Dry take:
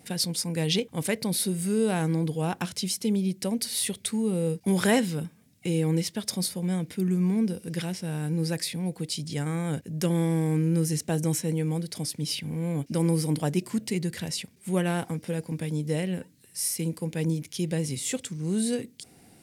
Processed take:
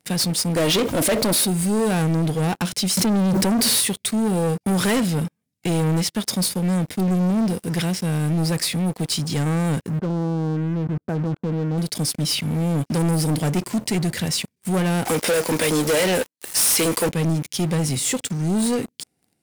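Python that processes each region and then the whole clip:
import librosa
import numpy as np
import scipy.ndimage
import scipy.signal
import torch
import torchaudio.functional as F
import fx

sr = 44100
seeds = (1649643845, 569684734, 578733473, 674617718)

y = fx.chain(x, sr, fx.peak_eq(hz=580.0, db=9.0, octaves=1.1),
    fx.comb(ms=3.2, depth=0.46),
    fx.env_flatten(amount_pct=50), at=(0.56, 1.45))
y = fx.chain(y, sr, fx.highpass(hz=99.0, slope=12),
    fx.tilt_shelf(db=3.5, hz=700.0),
    fx.env_flatten(amount_pct=100), at=(2.97, 3.81))
y = fx.chain(y, sr, fx.brickwall_lowpass(high_hz=1600.0),
    fx.level_steps(step_db=16), at=(9.99, 11.78))
y = fx.chain(y, sr, fx.highpass(hz=460.0, slope=12),
    fx.leveller(passes=5), at=(15.05, 17.09))
y = scipy.signal.sosfilt(scipy.signal.butter(2, 40.0, 'highpass', fs=sr, output='sos'), y)
y = fx.leveller(y, sr, passes=5)
y = F.gain(torch.from_numpy(y), -8.0).numpy()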